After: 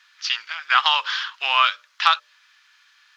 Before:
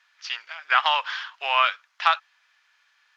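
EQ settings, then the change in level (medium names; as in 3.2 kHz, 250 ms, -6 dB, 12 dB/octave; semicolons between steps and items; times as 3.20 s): hum notches 60/120/180/240/300/360/420/480/540/600 Hz; dynamic bell 1.9 kHz, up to -6 dB, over -31 dBFS, Q 0.88; FFT filter 290 Hz 0 dB, 620 Hz -9 dB, 1.2 kHz +3 dB, 2.2 kHz +2 dB, 3.9 kHz +7 dB, 6.9 kHz +5 dB; +4.0 dB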